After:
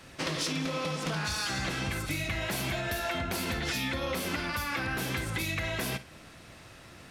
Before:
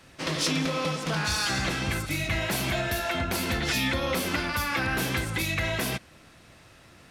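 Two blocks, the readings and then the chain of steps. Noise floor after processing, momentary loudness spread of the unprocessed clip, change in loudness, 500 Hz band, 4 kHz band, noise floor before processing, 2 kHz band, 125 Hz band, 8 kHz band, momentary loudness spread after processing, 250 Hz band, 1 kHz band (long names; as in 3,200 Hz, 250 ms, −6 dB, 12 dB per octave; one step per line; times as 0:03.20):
−51 dBFS, 3 LU, −4.5 dB, −4.0 dB, −4.5 dB, −54 dBFS, −4.5 dB, −4.0 dB, −4.5 dB, 19 LU, −4.5 dB, −4.5 dB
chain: downward compressor, threshold −32 dBFS, peak gain reduction 9 dB
on a send: flutter between parallel walls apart 9 metres, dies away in 0.22 s
on the sum: level +2.5 dB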